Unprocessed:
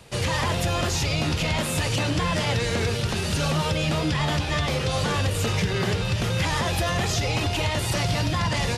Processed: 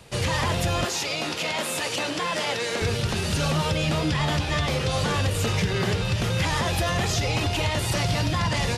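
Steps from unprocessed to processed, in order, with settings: 0.85–2.82 s: high-pass 320 Hz 12 dB/octave

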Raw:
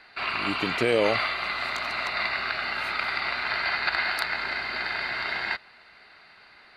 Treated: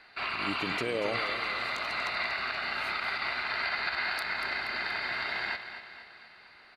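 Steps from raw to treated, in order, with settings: peak limiter -17.5 dBFS, peak gain reduction 7.5 dB; feedback delay 238 ms, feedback 53%, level -10.5 dB; trim -3.5 dB

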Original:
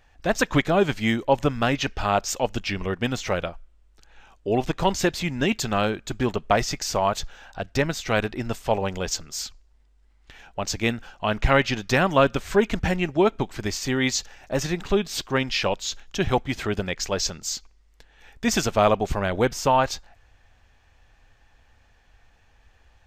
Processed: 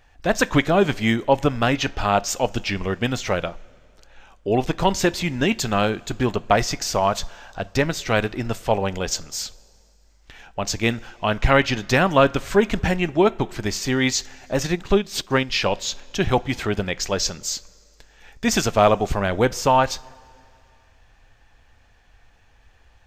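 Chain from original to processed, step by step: two-slope reverb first 0.31 s, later 2.6 s, from -16 dB, DRR 17.5 dB; 14.61–15.53 s: transient shaper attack +2 dB, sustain -6 dB; trim +2.5 dB

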